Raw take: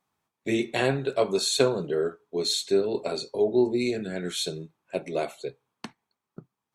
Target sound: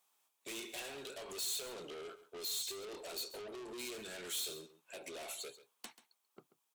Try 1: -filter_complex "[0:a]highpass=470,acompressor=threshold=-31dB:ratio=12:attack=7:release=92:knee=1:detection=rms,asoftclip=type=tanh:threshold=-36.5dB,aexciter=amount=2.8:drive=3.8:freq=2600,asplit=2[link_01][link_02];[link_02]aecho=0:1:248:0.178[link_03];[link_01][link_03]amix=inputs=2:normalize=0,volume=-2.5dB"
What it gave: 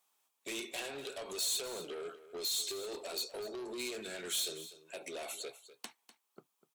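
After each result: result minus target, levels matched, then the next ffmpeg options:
echo 112 ms late; soft clipping: distortion −4 dB
-filter_complex "[0:a]highpass=470,acompressor=threshold=-31dB:ratio=12:attack=7:release=92:knee=1:detection=rms,asoftclip=type=tanh:threshold=-36.5dB,aexciter=amount=2.8:drive=3.8:freq=2600,asplit=2[link_01][link_02];[link_02]aecho=0:1:136:0.178[link_03];[link_01][link_03]amix=inputs=2:normalize=0,volume=-2.5dB"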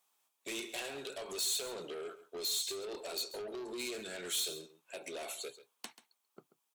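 soft clipping: distortion −4 dB
-filter_complex "[0:a]highpass=470,acompressor=threshold=-31dB:ratio=12:attack=7:release=92:knee=1:detection=rms,asoftclip=type=tanh:threshold=-43dB,aexciter=amount=2.8:drive=3.8:freq=2600,asplit=2[link_01][link_02];[link_02]aecho=0:1:136:0.178[link_03];[link_01][link_03]amix=inputs=2:normalize=0,volume=-2.5dB"

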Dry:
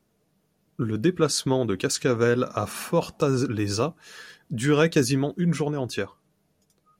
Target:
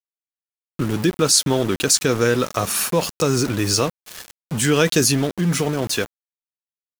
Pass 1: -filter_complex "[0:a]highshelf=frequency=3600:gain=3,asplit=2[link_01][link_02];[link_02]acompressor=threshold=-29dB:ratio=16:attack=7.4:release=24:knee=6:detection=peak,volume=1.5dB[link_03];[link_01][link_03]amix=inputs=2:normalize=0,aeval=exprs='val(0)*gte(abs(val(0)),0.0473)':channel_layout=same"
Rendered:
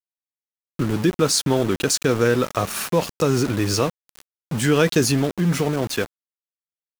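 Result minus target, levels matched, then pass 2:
8,000 Hz band −4.0 dB
-filter_complex "[0:a]highshelf=frequency=3600:gain=12,asplit=2[link_01][link_02];[link_02]acompressor=threshold=-29dB:ratio=16:attack=7.4:release=24:knee=6:detection=peak,volume=1.5dB[link_03];[link_01][link_03]amix=inputs=2:normalize=0,aeval=exprs='val(0)*gte(abs(val(0)),0.0473)':channel_layout=same"

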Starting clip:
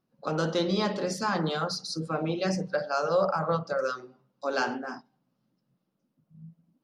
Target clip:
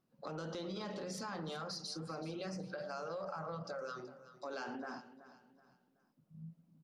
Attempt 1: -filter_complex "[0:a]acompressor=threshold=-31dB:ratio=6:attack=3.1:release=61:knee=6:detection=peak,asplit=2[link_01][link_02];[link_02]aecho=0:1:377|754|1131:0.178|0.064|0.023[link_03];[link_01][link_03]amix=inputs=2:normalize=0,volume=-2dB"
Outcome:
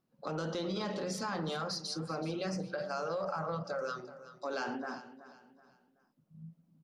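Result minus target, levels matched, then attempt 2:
downward compressor: peak gain reduction −6.5 dB
-filter_complex "[0:a]acompressor=threshold=-39dB:ratio=6:attack=3.1:release=61:knee=6:detection=peak,asplit=2[link_01][link_02];[link_02]aecho=0:1:377|754|1131:0.178|0.064|0.023[link_03];[link_01][link_03]amix=inputs=2:normalize=0,volume=-2dB"

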